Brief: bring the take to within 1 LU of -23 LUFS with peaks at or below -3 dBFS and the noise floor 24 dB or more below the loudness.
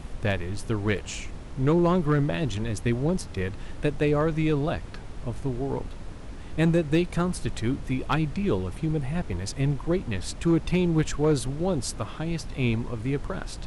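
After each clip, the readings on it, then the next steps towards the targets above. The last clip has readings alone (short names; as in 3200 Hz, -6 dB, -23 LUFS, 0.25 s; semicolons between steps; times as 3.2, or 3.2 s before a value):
clipped 0.4%; flat tops at -15.0 dBFS; noise floor -39 dBFS; noise floor target -51 dBFS; loudness -27.0 LUFS; peak -15.0 dBFS; loudness target -23.0 LUFS
-> clip repair -15 dBFS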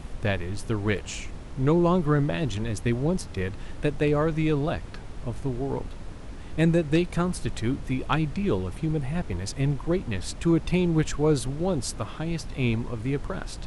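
clipped 0.0%; noise floor -39 dBFS; noise floor target -51 dBFS
-> noise print and reduce 12 dB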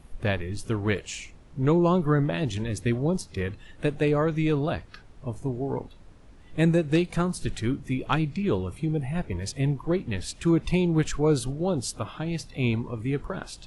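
noise floor -50 dBFS; noise floor target -51 dBFS
-> noise print and reduce 6 dB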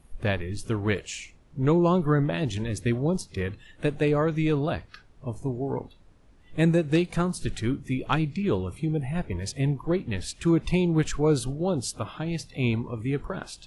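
noise floor -55 dBFS; loudness -27.0 LUFS; peak -9.5 dBFS; loudness target -23.0 LUFS
-> gain +4 dB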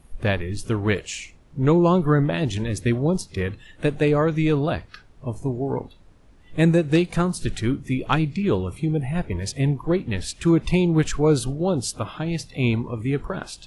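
loudness -23.0 LUFS; peak -5.5 dBFS; noise floor -51 dBFS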